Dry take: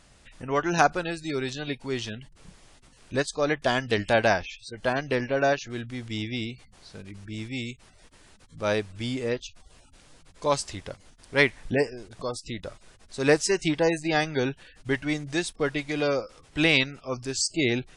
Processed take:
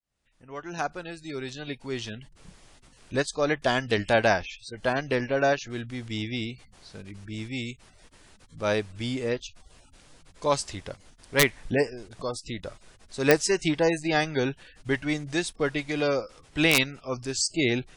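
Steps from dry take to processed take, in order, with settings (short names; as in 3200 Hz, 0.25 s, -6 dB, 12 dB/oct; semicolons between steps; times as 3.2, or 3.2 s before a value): opening faded in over 2.53 s; wrapped overs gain 8.5 dB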